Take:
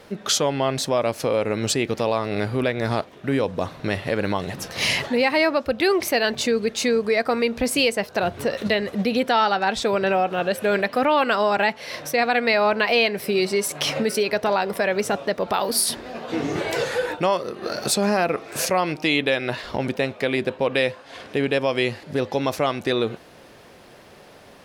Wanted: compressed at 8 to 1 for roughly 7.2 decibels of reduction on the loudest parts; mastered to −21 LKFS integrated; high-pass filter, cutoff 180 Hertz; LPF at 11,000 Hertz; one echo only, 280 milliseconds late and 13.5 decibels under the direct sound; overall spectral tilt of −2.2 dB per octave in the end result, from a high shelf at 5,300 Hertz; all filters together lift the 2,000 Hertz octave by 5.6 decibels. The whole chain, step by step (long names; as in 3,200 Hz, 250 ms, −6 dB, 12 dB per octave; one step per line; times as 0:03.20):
high-pass filter 180 Hz
low-pass filter 11,000 Hz
parametric band 2,000 Hz +5.5 dB
high-shelf EQ 5,300 Hz +9 dB
downward compressor 8 to 1, threshold −19 dBFS
single-tap delay 280 ms −13.5 dB
level +3 dB